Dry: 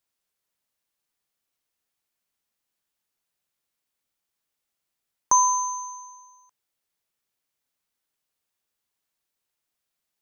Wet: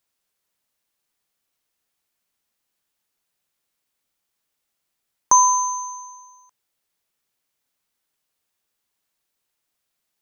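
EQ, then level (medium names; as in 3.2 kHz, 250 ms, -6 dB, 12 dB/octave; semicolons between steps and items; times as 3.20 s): hum notches 60/120 Hz; +4.5 dB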